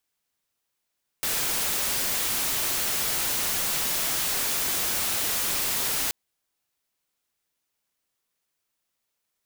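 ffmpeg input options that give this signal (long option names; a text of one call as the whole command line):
ffmpeg -f lavfi -i "anoisesrc=color=white:amplitude=0.0819:duration=4.88:sample_rate=44100:seed=1" out.wav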